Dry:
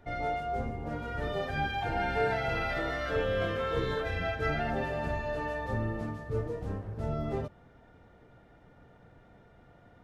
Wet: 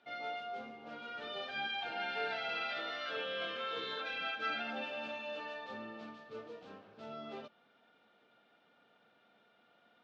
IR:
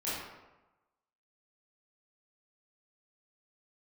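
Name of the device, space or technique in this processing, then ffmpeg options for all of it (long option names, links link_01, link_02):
kitchen radio: -filter_complex "[0:a]highpass=170,equalizer=frequency=220:width_type=q:width=4:gain=9,equalizer=frequency=950:width_type=q:width=4:gain=-4,equalizer=frequency=1900:width_type=q:width=4:gain=-10,lowpass=frequency=3700:width=0.5412,lowpass=frequency=3700:width=1.3066,aderivative,asettb=1/sr,asplit=3[link_01][link_02][link_03];[link_01]atrim=end=3.984[link_04];[link_02]atrim=start=3.98:end=5.4,asetpts=PTS-STARTPTS,afade=type=in:duration=0.004:curve=qsin,afade=type=out:start_time=1.416:duration=0.004:curve=qsin,aecho=1:1:3.7:0.55,atrim=end_sample=62622[link_05];[link_03]atrim=start=5.396[link_06];[link_04][link_05]acrossfade=duration=0.004:curve1=hsin:curve2=qsin[link_07];[link_07][link_06]acrossfade=duration=0.004:curve1=qsin:curve2=hsin,volume=11.5dB"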